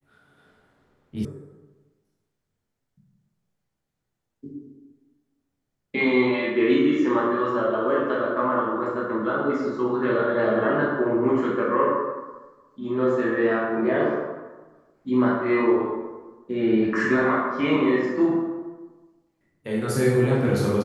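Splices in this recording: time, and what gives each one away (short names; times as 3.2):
1.25 sound cut off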